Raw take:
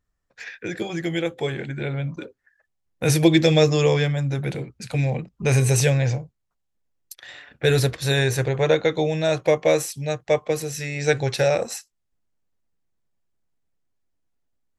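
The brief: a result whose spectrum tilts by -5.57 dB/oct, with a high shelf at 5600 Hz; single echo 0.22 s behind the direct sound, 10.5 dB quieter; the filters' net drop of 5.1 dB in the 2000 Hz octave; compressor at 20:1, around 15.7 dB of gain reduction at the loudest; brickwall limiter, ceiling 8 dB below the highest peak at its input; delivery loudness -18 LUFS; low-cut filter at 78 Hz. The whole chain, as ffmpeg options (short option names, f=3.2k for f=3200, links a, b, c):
-af "highpass=78,equalizer=f=2k:t=o:g=-6,highshelf=f=5.6k:g=-3.5,acompressor=threshold=-27dB:ratio=20,alimiter=limit=-23.5dB:level=0:latency=1,aecho=1:1:220:0.299,volume=15.5dB"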